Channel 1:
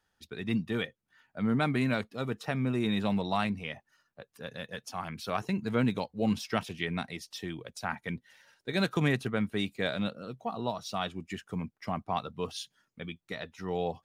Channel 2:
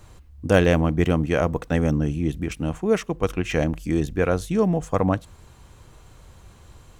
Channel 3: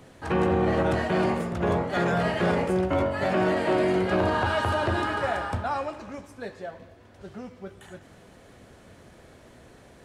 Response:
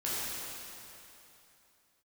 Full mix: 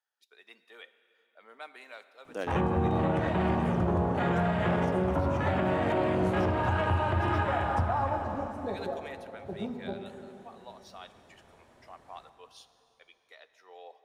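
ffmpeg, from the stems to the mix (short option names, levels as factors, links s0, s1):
-filter_complex "[0:a]highpass=f=510:w=0.5412,highpass=f=510:w=1.3066,volume=0.2,asplit=2[s0][s1];[s1]volume=0.119[s2];[1:a]highpass=f=250:w=0.5412,highpass=f=250:w=1.3066,adelay=1850,volume=0.133[s3];[2:a]afwtdn=0.0251,equalizer=f=900:w=1.5:g=7.5,acrossover=split=200|3000[s4][s5][s6];[s5]acompressor=threshold=0.0112:ratio=2[s7];[s4][s7][s6]amix=inputs=3:normalize=0,adelay=2250,volume=1.26,asplit=2[s8][s9];[s9]volume=0.398[s10];[3:a]atrim=start_sample=2205[s11];[s2][s10]amix=inputs=2:normalize=0[s12];[s12][s11]afir=irnorm=-1:irlink=0[s13];[s0][s3][s8][s13]amix=inputs=4:normalize=0,alimiter=limit=0.126:level=0:latency=1:release=192"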